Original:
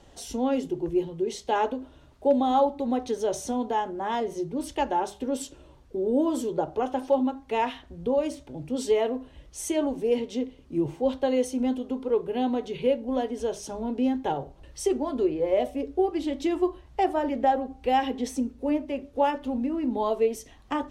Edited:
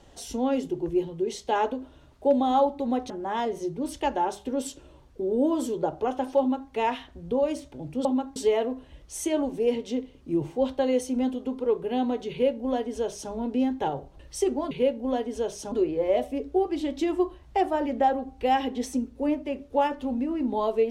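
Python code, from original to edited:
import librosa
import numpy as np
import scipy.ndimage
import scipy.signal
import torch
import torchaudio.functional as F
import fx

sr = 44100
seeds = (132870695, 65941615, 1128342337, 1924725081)

y = fx.edit(x, sr, fx.cut(start_s=3.1, length_s=0.75),
    fx.duplicate(start_s=7.14, length_s=0.31, to_s=8.8),
    fx.duplicate(start_s=12.75, length_s=1.01, to_s=15.15), tone=tone)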